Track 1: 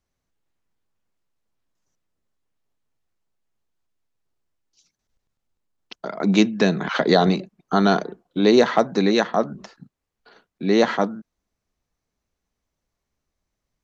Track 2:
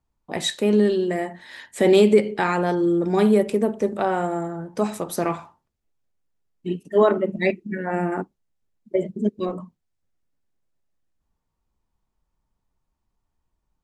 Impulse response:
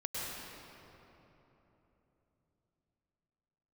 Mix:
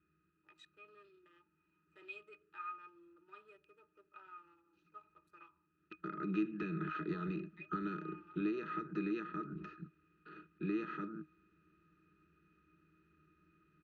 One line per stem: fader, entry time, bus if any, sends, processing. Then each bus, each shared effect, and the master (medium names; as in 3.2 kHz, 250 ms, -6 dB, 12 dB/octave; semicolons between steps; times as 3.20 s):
5.63 s -13 dB -> 6.08 s -5.5 dB, 0.00 s, no send, spectral levelling over time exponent 0.6; peaking EQ 1.8 kHz +10.5 dB 1 oct; compression 6:1, threshold -15 dBFS, peak gain reduction 9 dB
-6.5 dB, 0.15 s, no send, local Wiener filter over 25 samples; high-pass 720 Hz 24 dB/octave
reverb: none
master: Butterworth band-stop 690 Hz, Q 1.2; bass shelf 370 Hz -4 dB; pitch-class resonator D#, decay 0.11 s